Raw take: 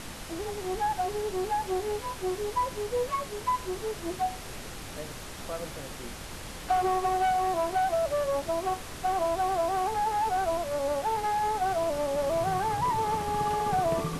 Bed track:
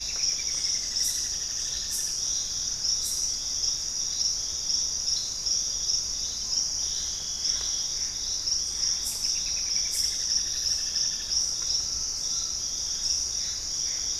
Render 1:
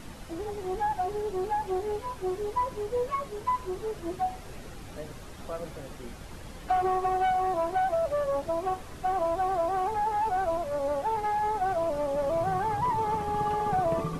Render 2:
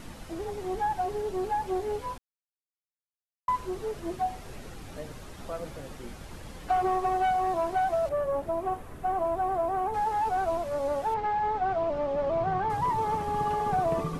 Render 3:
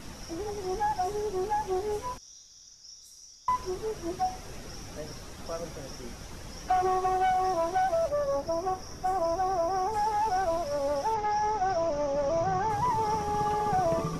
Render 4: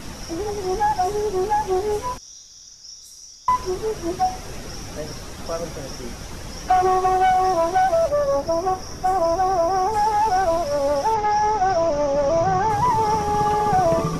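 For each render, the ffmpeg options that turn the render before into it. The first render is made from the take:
ffmpeg -i in.wav -af "afftdn=noise_reduction=9:noise_floor=-41" out.wav
ffmpeg -i in.wav -filter_complex "[0:a]asettb=1/sr,asplit=3[link_01][link_02][link_03];[link_01]atrim=end=8.094[link_04];[link_02]atrim=start=8.09:end=9.94,asetpts=PTS-STARTPTS,afade=type=in:duration=0.004:curve=qsin,afade=type=out:start_time=1.846:duration=0.004:curve=qsin,equalizer=frequency=5000:width=0.67:gain=-11[link_05];[link_03]atrim=start=9.936[link_06];[link_04][link_05]acrossfade=duration=0.004:curve1=hsin:curve2=qsin[link_07];[link_07][link_06]acrossfade=duration=0.004:curve1=qsin:curve2=hsin,asettb=1/sr,asplit=3[link_08][link_09][link_10];[link_08]atrim=end=11.144[link_11];[link_09]atrim=start=11.14:end=12.7,asetpts=PTS-STARTPTS,afade=type=in:duration=0.004:curve=qsin,afade=type=out:start_time=1.556:duration=0.004:curve=qsin,lowpass=3700[link_12];[link_10]atrim=start=12.696[link_13];[link_11][link_12]acrossfade=duration=0.004:curve1=hsin:curve2=qsin[link_14];[link_14][link_13]acrossfade=duration=0.004:curve1=qsin:curve2=hsin,asplit=3[link_15][link_16][link_17];[link_15]atrim=end=2.18,asetpts=PTS-STARTPTS,afade=type=out:start_time=2.176:duration=0.004:curve=hsin[link_18];[link_16]atrim=start=2.18:end=3.48,asetpts=PTS-STARTPTS,volume=0[link_19];[link_17]atrim=start=3.48,asetpts=PTS-STARTPTS,afade=type=in:duration=0.004:curve=hsin[link_20];[link_18][link_19][link_20]concat=n=3:v=0:a=1" out.wav
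ffmpeg -i in.wav -i bed.wav -filter_complex "[1:a]volume=-22.5dB[link_01];[0:a][link_01]amix=inputs=2:normalize=0" out.wav
ffmpeg -i in.wav -af "volume=8.5dB" out.wav

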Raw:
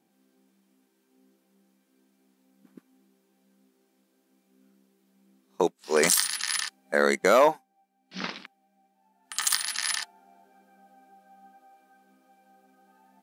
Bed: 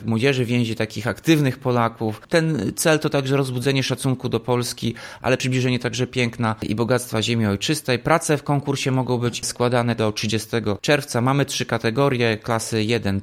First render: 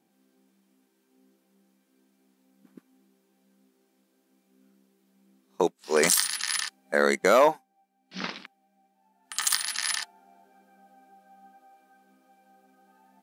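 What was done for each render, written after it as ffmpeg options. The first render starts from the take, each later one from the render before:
ffmpeg -i in.wav -af anull out.wav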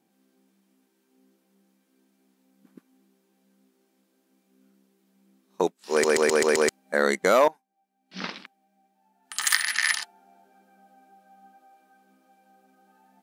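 ffmpeg -i in.wav -filter_complex "[0:a]asettb=1/sr,asplit=3[link_01][link_02][link_03];[link_01]atrim=end=9.444[link_04];[link_02]atrim=start=9.44:end=9.94,asetpts=PTS-STARTPTS,afade=type=in:duration=0.004:curve=qsin,afade=type=out:start_time=0.496:duration=0.004:curve=qsin,equalizer=frequency=1900:width=1.7:gain=12[link_05];[link_03]atrim=start=9.936[link_06];[link_04][link_05]acrossfade=duration=0.004:curve1=hsin:curve2=qsin[link_07];[link_07][link_06]acrossfade=duration=0.004:curve1=qsin:curve2=hsin,asplit=8[link_08][link_09][link_10][link_11][link_12][link_13][link_14][link_15];[link_08]atrim=end=6.042[link_16];[link_09]atrim=start=5.908:end=6.042[link_17];[link_10]atrim=start=5.908:end=6.042[link_18];[link_11]atrim=start=5.908:end=6.042[link_19];[link_12]atrim=start=5.908:end=6.042[link_20];[link_13]atrim=start=5.908:end=6.042[link_21];[link_14]atrim=start=6.688:end=7.48,asetpts=PTS-STARTPTS,afade=type=out:start_time=0.788:duration=0.004:curve=hsin:silence=0.133352[link_22];[link_15]atrim=start=7.48,asetpts=PTS-STARTPTS,afade=type=in:duration=0.75:silence=0.133352[link_23];[link_16][link_17]acrossfade=duration=0.004:curve1=hsin:curve2=hsin[link_24];[link_24][link_18]acrossfade=duration=0.004:curve1=hsin:curve2=hsin[link_25];[link_25][link_19]acrossfade=duration=0.004:curve1=hsin:curve2=hsin[link_26];[link_26][link_20]acrossfade=duration=0.004:curve1=hsin:curve2=hsin[link_27];[link_27][link_21]acrossfade=duration=0.004:curve1=hsin:curve2=hsin[link_28];[link_22][link_23]concat=n=2:v=0:a=1[link_29];[link_28][link_29]acrossfade=duration=0.004:curve1=hsin:curve2=hsin" out.wav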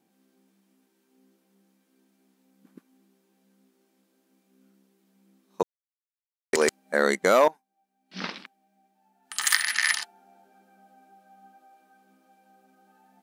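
ffmpeg -i in.wav -filter_complex "[0:a]asplit=3[link_01][link_02][link_03];[link_01]atrim=end=5.63,asetpts=PTS-STARTPTS,afade=type=out:start_time=5.626:duration=0.004:curve=hsin[link_04];[link_02]atrim=start=5.63:end=6.53,asetpts=PTS-STARTPTS,volume=0[link_05];[link_03]atrim=start=6.53,asetpts=PTS-STARTPTS,afade=type=in:duration=0.004:curve=hsin[link_06];[link_04][link_05][link_06]concat=n=3:v=0:a=1" out.wav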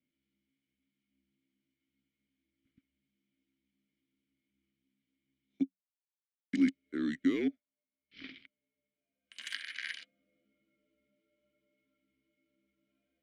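ffmpeg -i in.wav -filter_complex "[0:a]afreqshift=-190,asplit=3[link_01][link_02][link_03];[link_01]bandpass=frequency=270:width_type=q:width=8,volume=0dB[link_04];[link_02]bandpass=frequency=2290:width_type=q:width=8,volume=-6dB[link_05];[link_03]bandpass=frequency=3010:width_type=q:width=8,volume=-9dB[link_06];[link_04][link_05][link_06]amix=inputs=3:normalize=0" out.wav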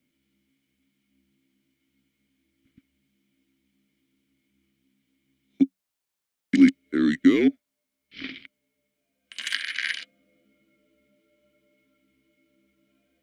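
ffmpeg -i in.wav -af "volume=12dB" out.wav

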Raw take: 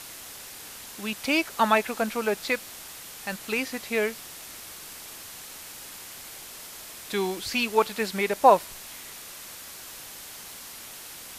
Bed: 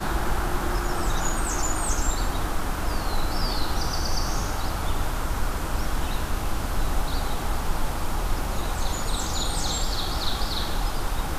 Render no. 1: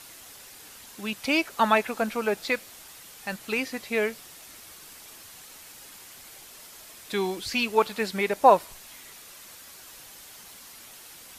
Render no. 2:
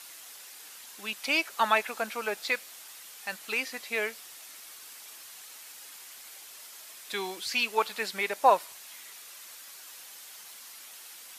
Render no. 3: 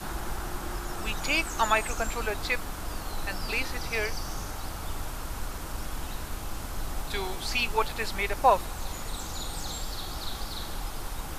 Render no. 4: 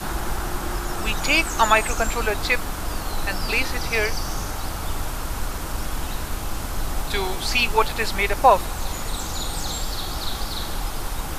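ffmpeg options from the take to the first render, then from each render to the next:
ffmpeg -i in.wav -af "afftdn=noise_reduction=6:noise_floor=-43" out.wav
ffmpeg -i in.wav -af "highpass=frequency=990:poles=1" out.wav
ffmpeg -i in.wav -i bed.wav -filter_complex "[1:a]volume=-9dB[link_01];[0:a][link_01]amix=inputs=2:normalize=0" out.wav
ffmpeg -i in.wav -af "volume=7.5dB,alimiter=limit=-3dB:level=0:latency=1" out.wav

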